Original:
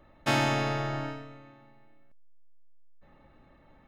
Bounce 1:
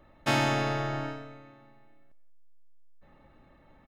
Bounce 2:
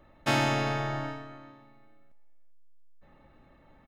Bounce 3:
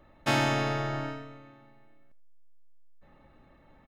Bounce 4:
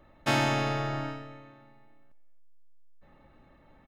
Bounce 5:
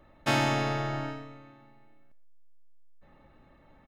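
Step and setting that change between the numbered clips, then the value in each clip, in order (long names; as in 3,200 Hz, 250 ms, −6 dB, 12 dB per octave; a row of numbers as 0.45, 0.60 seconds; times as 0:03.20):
far-end echo of a speakerphone, delay time: 180, 390, 80, 270, 120 milliseconds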